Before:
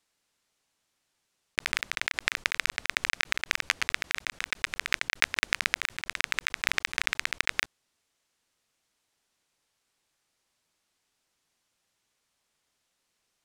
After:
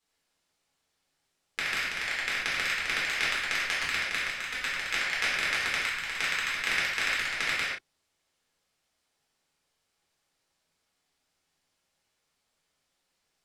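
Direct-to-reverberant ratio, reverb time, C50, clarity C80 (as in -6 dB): -8.0 dB, not exponential, 0.5 dB, 4.0 dB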